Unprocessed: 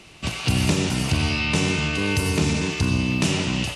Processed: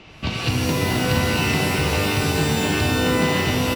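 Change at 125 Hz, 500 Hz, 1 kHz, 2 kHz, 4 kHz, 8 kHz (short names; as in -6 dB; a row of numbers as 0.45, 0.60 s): +0.5, +6.0, +7.0, +3.0, +2.0, +0.5 dB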